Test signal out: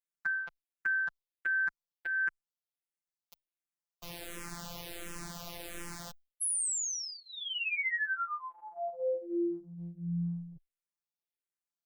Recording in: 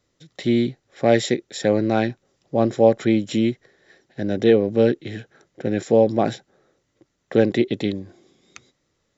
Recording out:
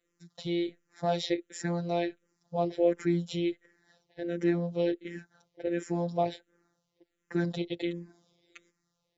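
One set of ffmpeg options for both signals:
ffmpeg -i in.wav -filter_complex "[0:a]afftfilt=real='hypot(re,im)*cos(PI*b)':imag='0':win_size=1024:overlap=0.75,asplit=2[link_01][link_02];[link_02]afreqshift=-1.4[link_03];[link_01][link_03]amix=inputs=2:normalize=1,volume=-3dB" out.wav

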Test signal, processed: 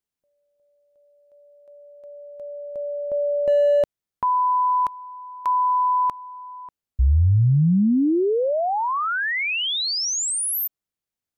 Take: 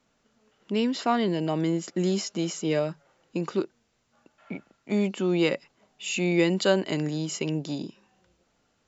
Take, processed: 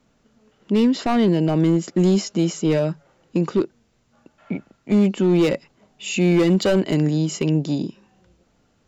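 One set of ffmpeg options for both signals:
ffmpeg -i in.wav -af "asoftclip=type=hard:threshold=-20.5dB,lowshelf=frequency=410:gain=9,volume=3dB" out.wav

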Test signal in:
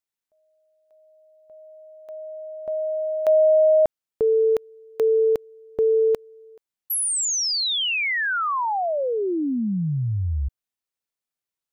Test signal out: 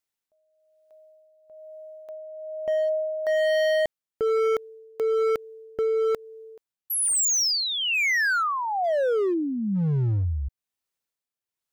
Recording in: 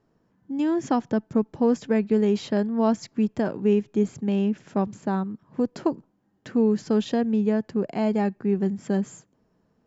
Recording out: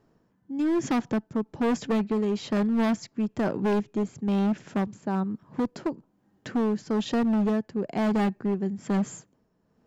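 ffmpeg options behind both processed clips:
ffmpeg -i in.wav -af "tremolo=f=1.1:d=0.6,acontrast=81,volume=17.5dB,asoftclip=hard,volume=-17.5dB,volume=-3.5dB" out.wav

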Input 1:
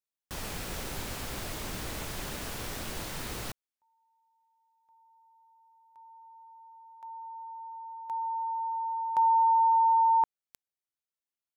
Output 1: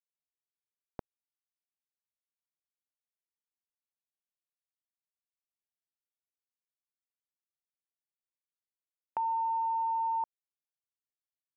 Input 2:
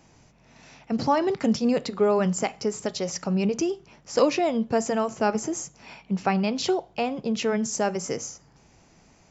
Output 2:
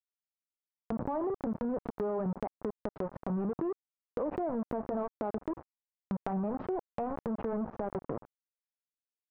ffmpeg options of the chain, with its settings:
ffmpeg -i in.wav -filter_complex "[0:a]afftdn=noise_reduction=24:noise_floor=-37,asplit=2[link_01][link_02];[link_02]alimiter=limit=-19dB:level=0:latency=1:release=72,volume=2dB[link_03];[link_01][link_03]amix=inputs=2:normalize=0,aeval=exprs='val(0)*gte(abs(val(0)),0.1)':channel_layout=same,lowpass=frequency=1100:width=0.5412,lowpass=frequency=1100:width=1.3066,acompressor=threshold=-31dB:ratio=6:attack=2.2:release=64:knee=1:detection=peak" out.wav

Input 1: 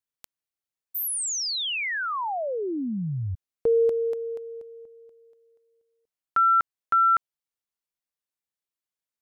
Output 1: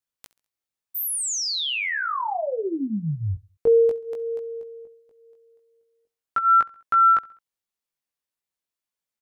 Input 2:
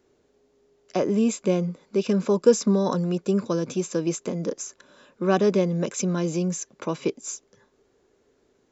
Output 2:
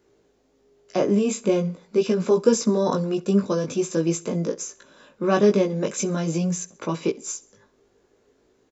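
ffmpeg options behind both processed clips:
ffmpeg -i in.wav -filter_complex "[0:a]flanger=delay=17.5:depth=2.3:speed=0.44,asplit=2[link_01][link_02];[link_02]aecho=0:1:67|134|201:0.0794|0.0357|0.0161[link_03];[link_01][link_03]amix=inputs=2:normalize=0,volume=5dB" out.wav

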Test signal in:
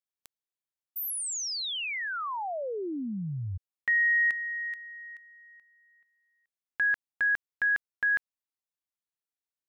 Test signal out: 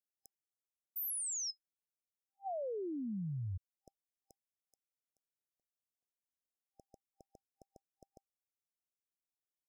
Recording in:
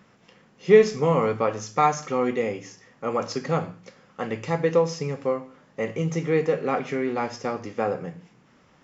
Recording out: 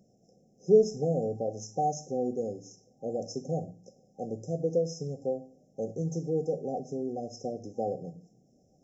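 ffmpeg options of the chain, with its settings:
ffmpeg -i in.wav -af "afftfilt=real='re*(1-between(b*sr/4096,790,5100))':imag='im*(1-between(b*sr/4096,790,5100))':win_size=4096:overlap=0.75,adynamicequalizer=threshold=0.02:dfrequency=390:dqfactor=0.81:tfrequency=390:tqfactor=0.81:attack=5:release=100:ratio=0.333:range=1.5:mode=cutabove:tftype=bell,volume=-5.5dB" out.wav

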